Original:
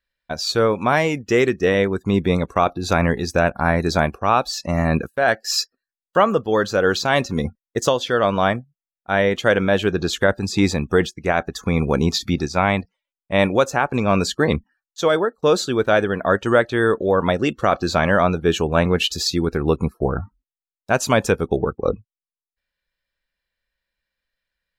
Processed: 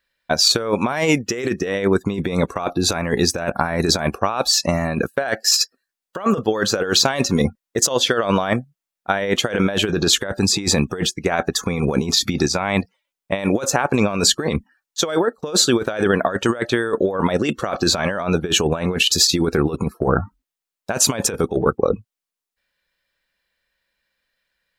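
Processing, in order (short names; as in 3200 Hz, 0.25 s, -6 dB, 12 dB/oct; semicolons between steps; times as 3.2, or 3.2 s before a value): dynamic EQ 9300 Hz, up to +5 dB, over -44 dBFS, Q 0.72; negative-ratio compressor -21 dBFS, ratio -0.5; low shelf 87 Hz -12 dB; gain +4.5 dB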